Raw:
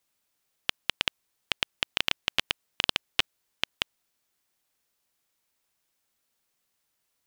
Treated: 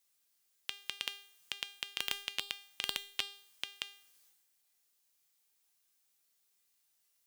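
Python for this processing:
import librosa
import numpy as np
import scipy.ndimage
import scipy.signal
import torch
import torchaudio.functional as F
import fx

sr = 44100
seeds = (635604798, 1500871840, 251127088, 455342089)

y = scipy.signal.sosfilt(scipy.signal.butter(2, 89.0, 'highpass', fs=sr, output='sos'), x)
y = fx.high_shelf(y, sr, hz=2700.0, db=11.0)
y = fx.transient(y, sr, attack_db=-8, sustain_db=9)
y = fx.comb_fb(y, sr, f0_hz=400.0, decay_s=0.54, harmonics='all', damping=0.0, mix_pct=80)
y = y * 10.0 ** (4.0 / 20.0)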